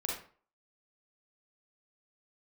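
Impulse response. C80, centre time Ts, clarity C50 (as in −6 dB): 8.0 dB, 42 ms, 2.5 dB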